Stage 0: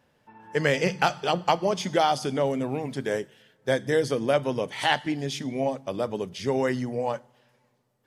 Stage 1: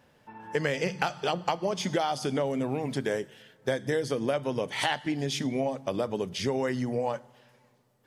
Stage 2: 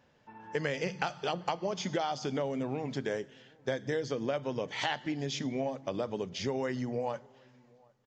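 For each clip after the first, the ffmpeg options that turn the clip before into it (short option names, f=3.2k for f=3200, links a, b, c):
-af "acompressor=threshold=-30dB:ratio=4,volume=4dB"
-filter_complex "[0:a]asplit=2[a][b];[b]adelay=758,volume=-28dB,highshelf=f=4k:g=-17.1[c];[a][c]amix=inputs=2:normalize=0,aresample=16000,aresample=44100,volume=-4.5dB"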